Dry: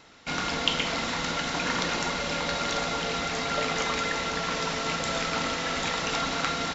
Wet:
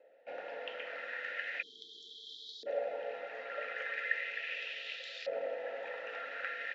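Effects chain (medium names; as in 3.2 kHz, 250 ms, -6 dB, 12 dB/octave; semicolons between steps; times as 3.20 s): spectral selection erased 1.62–2.67 s, 470–3100 Hz; LFO band-pass saw up 0.38 Hz 600–4500 Hz; vowel filter e; trim +9 dB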